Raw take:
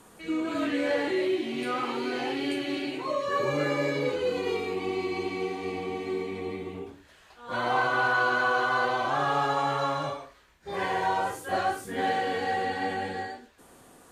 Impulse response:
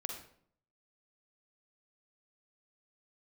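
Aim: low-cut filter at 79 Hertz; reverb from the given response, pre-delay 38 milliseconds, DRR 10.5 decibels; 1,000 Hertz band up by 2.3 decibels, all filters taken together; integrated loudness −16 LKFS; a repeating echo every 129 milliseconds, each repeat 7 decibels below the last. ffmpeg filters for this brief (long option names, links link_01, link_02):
-filter_complex "[0:a]highpass=79,equalizer=frequency=1000:width_type=o:gain=3,aecho=1:1:129|258|387|516|645:0.447|0.201|0.0905|0.0407|0.0183,asplit=2[link_01][link_02];[1:a]atrim=start_sample=2205,adelay=38[link_03];[link_02][link_03]afir=irnorm=-1:irlink=0,volume=-10.5dB[link_04];[link_01][link_04]amix=inputs=2:normalize=0,volume=9.5dB"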